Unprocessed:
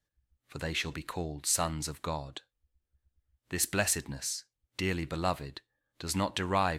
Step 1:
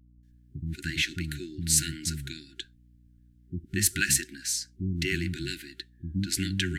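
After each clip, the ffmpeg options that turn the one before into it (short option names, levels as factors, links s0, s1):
-filter_complex "[0:a]acrossover=split=270[s0][s1];[s1]adelay=230[s2];[s0][s2]amix=inputs=2:normalize=0,afftfilt=real='re*(1-between(b*sr/4096,380,1400))':imag='im*(1-between(b*sr/4096,380,1400))':win_size=4096:overlap=0.75,aeval=exprs='val(0)+0.000794*(sin(2*PI*60*n/s)+sin(2*PI*2*60*n/s)/2+sin(2*PI*3*60*n/s)/3+sin(2*PI*4*60*n/s)/4+sin(2*PI*5*60*n/s)/5)':c=same,volume=1.88"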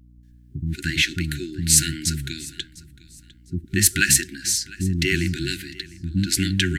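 -af "aecho=1:1:703|1406:0.0891|0.0241,volume=2.37"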